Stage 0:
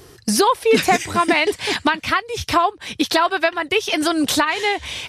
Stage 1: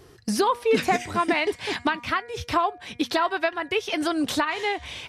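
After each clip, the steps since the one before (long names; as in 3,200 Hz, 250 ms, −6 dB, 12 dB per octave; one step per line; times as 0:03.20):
high-shelf EQ 4,300 Hz −7.5 dB
hum removal 239.5 Hz, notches 10
level −5.5 dB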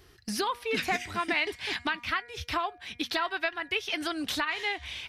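octave-band graphic EQ 125/250/500/1,000/8,000 Hz −9/−6/−10/−6/−7 dB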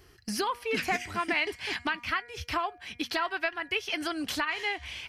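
notch filter 3,700 Hz, Q 7.2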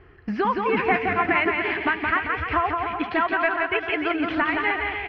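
low-pass filter 2,300 Hz 24 dB per octave
on a send: bouncing-ball delay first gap 170 ms, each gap 0.75×, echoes 5
on the sum: level +7.5 dB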